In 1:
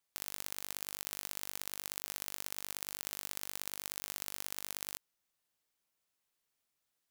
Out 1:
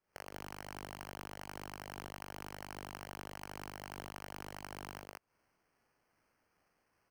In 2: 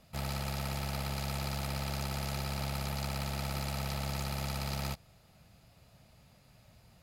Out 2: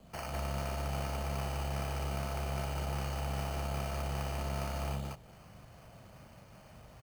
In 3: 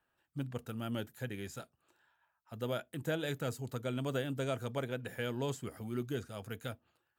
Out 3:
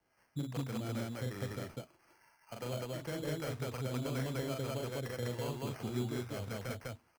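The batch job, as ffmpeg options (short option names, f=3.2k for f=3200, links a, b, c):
-filter_complex "[0:a]equalizer=f=630:t=o:w=2.3:g=4,acrossover=split=120|1600[a][b][c];[a]acompressor=threshold=-45dB:ratio=4[d];[b]acompressor=threshold=-43dB:ratio=4[e];[c]acompressor=threshold=-53dB:ratio=4[f];[d][e][f]amix=inputs=3:normalize=0,acrossover=split=580[g][h];[g]aeval=exprs='val(0)*(1-0.7/2+0.7/2*cos(2*PI*2.5*n/s))':c=same[i];[h]aeval=exprs='val(0)*(1-0.7/2-0.7/2*cos(2*PI*2.5*n/s))':c=same[j];[i][j]amix=inputs=2:normalize=0,acrusher=samples=12:mix=1:aa=0.000001,aecho=1:1:40.82|201.2:0.708|1,volume=4.5dB"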